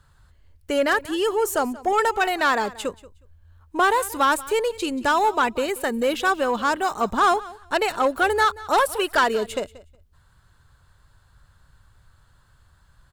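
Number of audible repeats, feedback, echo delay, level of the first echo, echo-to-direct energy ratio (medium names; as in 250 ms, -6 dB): 2, 17%, 182 ms, -19.5 dB, -19.5 dB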